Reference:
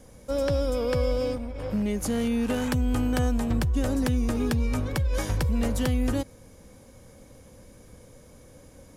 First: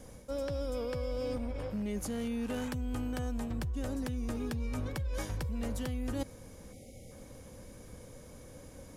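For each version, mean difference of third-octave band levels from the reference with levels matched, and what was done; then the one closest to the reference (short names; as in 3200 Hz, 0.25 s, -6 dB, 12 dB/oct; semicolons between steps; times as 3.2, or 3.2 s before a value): 4.0 dB: spectral delete 6.73–7.11, 810–1900 Hz; reverse; compressor 10:1, threshold -32 dBFS, peak gain reduction 12 dB; reverse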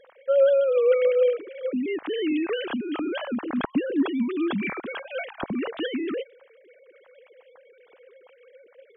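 14.5 dB: sine-wave speech; high shelf 2500 Hz +8.5 dB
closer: first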